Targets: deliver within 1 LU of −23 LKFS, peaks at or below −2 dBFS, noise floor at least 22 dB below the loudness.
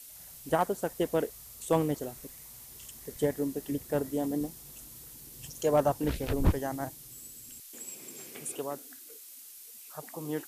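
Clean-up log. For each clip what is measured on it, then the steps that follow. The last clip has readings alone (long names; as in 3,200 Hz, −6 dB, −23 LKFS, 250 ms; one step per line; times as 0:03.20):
background noise floor −49 dBFS; target noise floor −55 dBFS; integrated loudness −32.5 LKFS; sample peak −15.5 dBFS; target loudness −23.0 LKFS
→ noise reduction from a noise print 6 dB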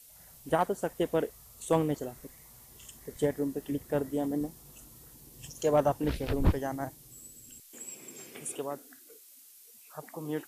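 background noise floor −55 dBFS; integrated loudness −32.0 LKFS; sample peak −15.5 dBFS; target loudness −23.0 LKFS
→ level +9 dB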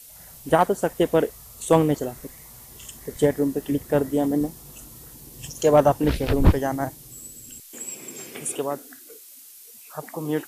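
integrated loudness −23.0 LKFS; sample peak −6.5 dBFS; background noise floor −46 dBFS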